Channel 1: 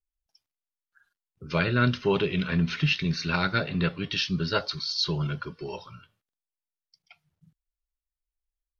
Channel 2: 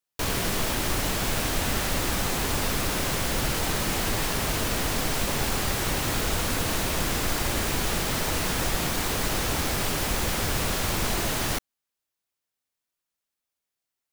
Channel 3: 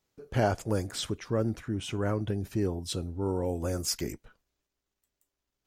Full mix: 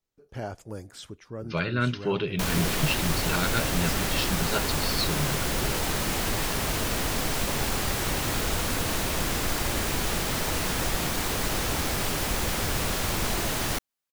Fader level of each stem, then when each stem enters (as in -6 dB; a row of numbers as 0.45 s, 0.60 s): -3.0 dB, -1.0 dB, -9.0 dB; 0.00 s, 2.20 s, 0.00 s